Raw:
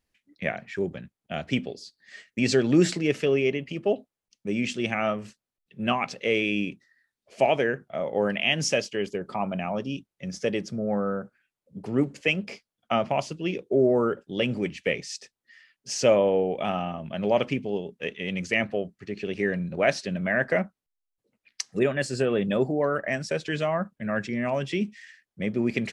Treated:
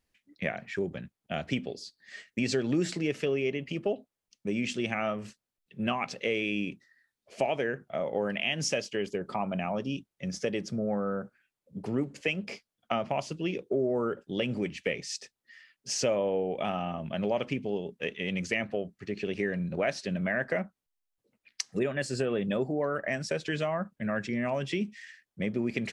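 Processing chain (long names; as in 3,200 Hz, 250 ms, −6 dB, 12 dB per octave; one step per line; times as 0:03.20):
downward compressor 2.5 to 1, threshold −28 dBFS, peak gain reduction 9.5 dB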